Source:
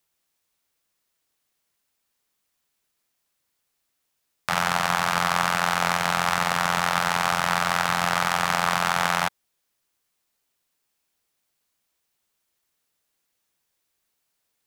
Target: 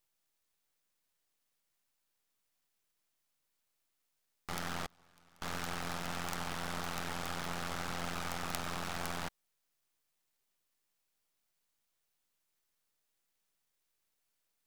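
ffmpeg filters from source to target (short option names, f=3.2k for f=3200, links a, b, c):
-filter_complex "[0:a]aeval=exprs='0.794*(cos(1*acos(clip(val(0)/0.794,-1,1)))-cos(1*PI/2))+0.355*(cos(4*acos(clip(val(0)/0.794,-1,1)))-cos(4*PI/2))':c=same,aeval=exprs='max(val(0),0)':c=same,asettb=1/sr,asplit=3[a][b][c];[a]atrim=end=4.864[d];[b]atrim=start=4.86:end=5.42,asetpts=PTS-STARTPTS,afade=t=in:d=0.004:c=qsin,afade=t=out:st=0.556:d=0.004:c=qsin,agate=range=-33dB:threshold=-18dB:ratio=3:detection=peak[e];[c]atrim=start=5.416[f];[d][e]acrossfade=d=0.004:c1=hsin:c2=qsin[g];[g][f]acrossfade=d=0.004:c1=qsin:c2=hsin,volume=-2.5dB"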